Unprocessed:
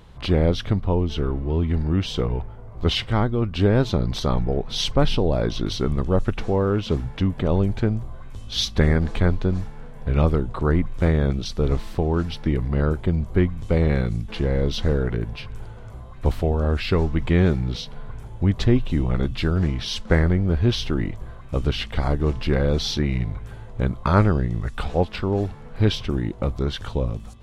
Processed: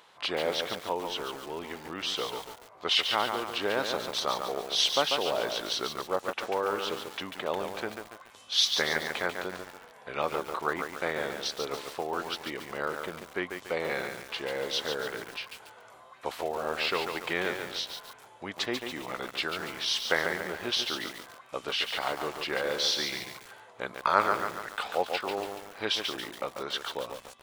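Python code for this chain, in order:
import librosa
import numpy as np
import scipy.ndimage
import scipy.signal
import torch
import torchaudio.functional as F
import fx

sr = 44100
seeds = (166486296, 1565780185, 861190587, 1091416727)

y = scipy.signal.sosfilt(scipy.signal.butter(2, 730.0, 'highpass', fs=sr, output='sos'), x)
y = fx.echo_crushed(y, sr, ms=142, feedback_pct=55, bits=7, wet_db=-5)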